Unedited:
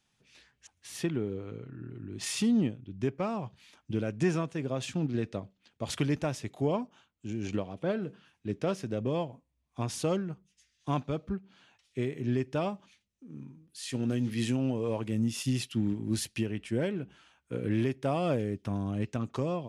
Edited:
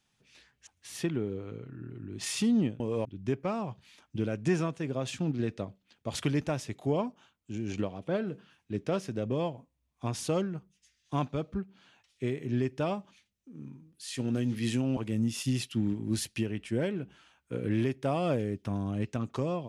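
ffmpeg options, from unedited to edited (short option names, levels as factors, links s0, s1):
-filter_complex "[0:a]asplit=4[s0][s1][s2][s3];[s0]atrim=end=2.802[s4];[s1]atrim=start=14.718:end=14.972[s5];[s2]atrim=start=2.798:end=14.722[s6];[s3]atrim=start=14.968[s7];[s4][s5]acrossfade=d=0.004:c1=hsin:c2=hsin[s8];[s8][s6]acrossfade=d=0.004:c1=hsin:c2=hsin[s9];[s9][s7]acrossfade=d=0.004:c1=hsin:c2=hsin"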